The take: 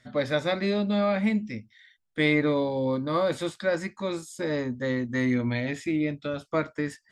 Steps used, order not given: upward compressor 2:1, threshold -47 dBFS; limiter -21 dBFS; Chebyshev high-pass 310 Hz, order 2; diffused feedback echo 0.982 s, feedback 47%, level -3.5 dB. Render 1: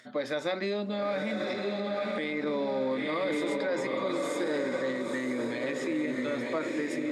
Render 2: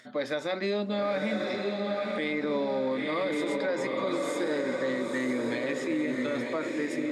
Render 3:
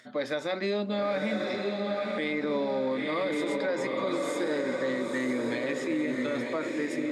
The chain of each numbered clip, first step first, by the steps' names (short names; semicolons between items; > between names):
upward compressor > diffused feedback echo > limiter > Chebyshev high-pass; Chebyshev high-pass > upward compressor > diffused feedback echo > limiter; diffused feedback echo > upward compressor > Chebyshev high-pass > limiter